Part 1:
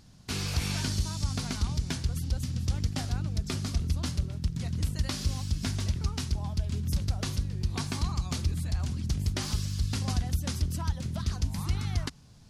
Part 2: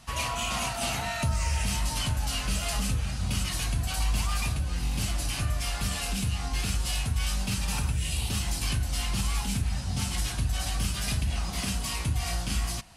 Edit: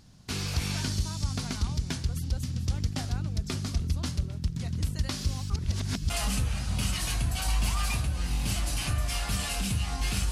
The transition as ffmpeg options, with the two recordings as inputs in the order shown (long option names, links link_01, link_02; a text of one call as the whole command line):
ffmpeg -i cue0.wav -i cue1.wav -filter_complex "[0:a]apad=whole_dur=10.31,atrim=end=10.31,asplit=2[link_01][link_02];[link_01]atrim=end=5.502[link_03];[link_02]atrim=start=5.498:end=6.102,asetpts=PTS-STARTPTS,areverse[link_04];[1:a]atrim=start=2.618:end=6.83[link_05];[link_03][link_04]acrossfade=duration=0.004:curve1=hsin:curve2=hsin[link_06];[link_06][link_05]acrossfade=duration=0.004:curve1=hsin:curve2=hsin" out.wav